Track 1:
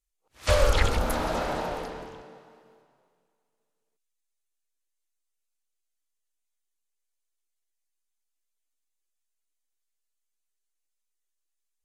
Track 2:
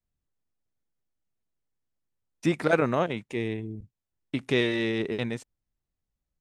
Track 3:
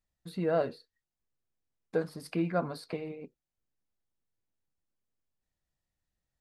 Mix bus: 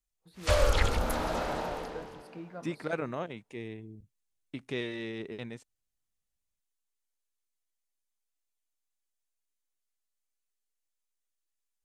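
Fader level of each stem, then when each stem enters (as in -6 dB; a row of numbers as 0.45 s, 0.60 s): -3.5 dB, -10.5 dB, -14.0 dB; 0.00 s, 0.20 s, 0.00 s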